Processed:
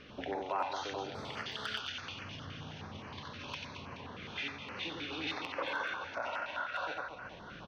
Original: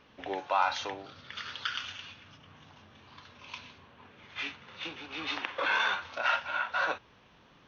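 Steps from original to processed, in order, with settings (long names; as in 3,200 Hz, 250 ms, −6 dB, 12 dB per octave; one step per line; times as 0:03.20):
high-frequency loss of the air 57 metres
downward compressor 2.5 to 1, threshold −49 dBFS, peak gain reduction 17.5 dB
0:05.73–0:06.33: parametric band 3,700 Hz −10.5 dB 0.77 octaves
reverse bouncing-ball delay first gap 90 ms, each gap 1.5×, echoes 5
gain into a clipping stage and back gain 32 dB
0:01.15–0:01.80: phone interference −59 dBFS
notch on a step sequencer 9.6 Hz 910–3,600 Hz
level +9 dB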